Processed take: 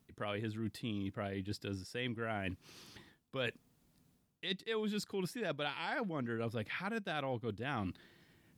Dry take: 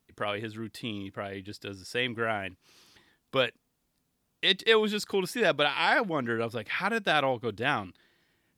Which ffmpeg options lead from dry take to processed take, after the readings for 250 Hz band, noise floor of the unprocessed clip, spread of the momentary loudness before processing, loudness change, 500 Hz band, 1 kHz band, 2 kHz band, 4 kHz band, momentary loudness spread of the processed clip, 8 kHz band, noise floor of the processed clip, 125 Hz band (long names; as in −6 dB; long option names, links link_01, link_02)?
−5.5 dB, −76 dBFS, 14 LU, −11.5 dB, −11.5 dB, −12.5 dB, −13.0 dB, −14.0 dB, 7 LU, −9.0 dB, −74 dBFS, −2.5 dB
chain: -af "equalizer=frequency=140:width=0.53:gain=8,areverse,acompressor=threshold=-38dB:ratio=6,areverse,volume=1.5dB"